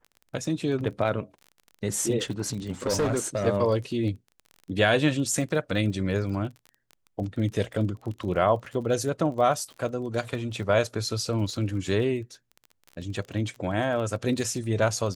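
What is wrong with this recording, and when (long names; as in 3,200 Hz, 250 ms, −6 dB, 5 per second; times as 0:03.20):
surface crackle 23 per second −35 dBFS
0:02.22–0:03.47: clipping −21 dBFS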